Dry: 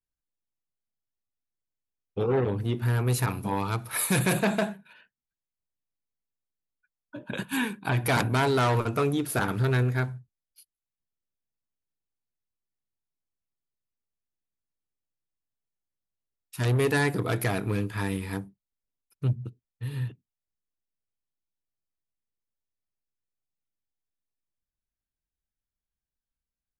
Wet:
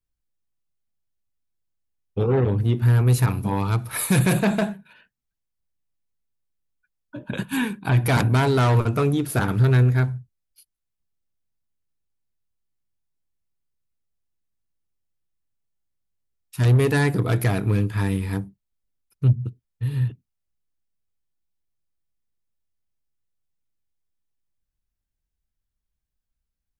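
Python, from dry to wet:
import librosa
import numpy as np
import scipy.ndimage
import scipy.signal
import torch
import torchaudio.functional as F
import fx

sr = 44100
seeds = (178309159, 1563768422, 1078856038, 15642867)

y = fx.low_shelf(x, sr, hz=180.0, db=10.5)
y = y * 10.0 ** (1.5 / 20.0)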